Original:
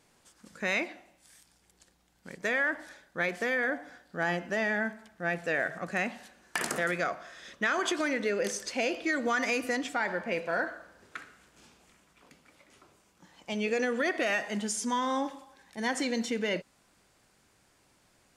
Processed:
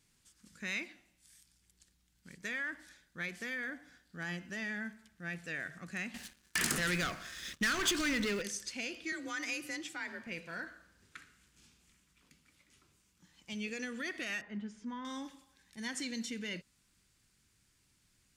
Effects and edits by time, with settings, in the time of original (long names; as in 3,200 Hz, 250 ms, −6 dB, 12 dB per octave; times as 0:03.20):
0:06.14–0:08.42: leveller curve on the samples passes 3
0:09.12–0:10.27: frequency shifter +39 Hz
0:14.41–0:15.05: low-pass filter 1,600 Hz
whole clip: guitar amp tone stack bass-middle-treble 6-0-2; level +11 dB